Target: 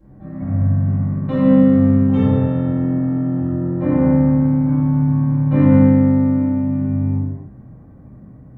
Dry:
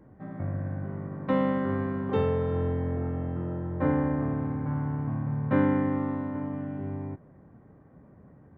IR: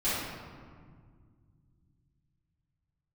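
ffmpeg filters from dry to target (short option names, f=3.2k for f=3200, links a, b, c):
-filter_complex "[0:a]bass=f=250:g=7,treble=f=4k:g=7[a];[1:a]atrim=start_sample=2205,afade=t=out:st=0.39:d=0.01,atrim=end_sample=17640[b];[a][b]afir=irnorm=-1:irlink=0,volume=-5.5dB"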